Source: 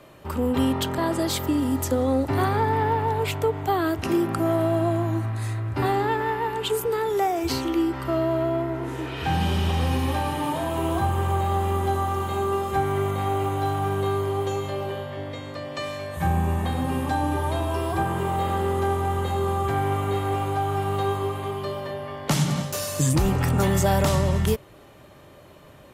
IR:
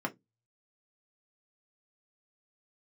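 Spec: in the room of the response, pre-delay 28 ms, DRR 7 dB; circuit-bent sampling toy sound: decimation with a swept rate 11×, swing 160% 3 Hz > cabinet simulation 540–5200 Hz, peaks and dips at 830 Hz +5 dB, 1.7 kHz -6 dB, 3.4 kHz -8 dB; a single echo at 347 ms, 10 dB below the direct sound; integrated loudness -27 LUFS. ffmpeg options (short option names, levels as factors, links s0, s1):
-filter_complex "[0:a]aecho=1:1:347:0.316,asplit=2[s0][s1];[1:a]atrim=start_sample=2205,adelay=28[s2];[s1][s2]afir=irnorm=-1:irlink=0,volume=0.251[s3];[s0][s3]amix=inputs=2:normalize=0,acrusher=samples=11:mix=1:aa=0.000001:lfo=1:lforange=17.6:lforate=3,highpass=540,equalizer=f=830:t=q:w=4:g=5,equalizer=f=1700:t=q:w=4:g=-6,equalizer=f=3400:t=q:w=4:g=-8,lowpass=f=5200:w=0.5412,lowpass=f=5200:w=1.3066,volume=0.794"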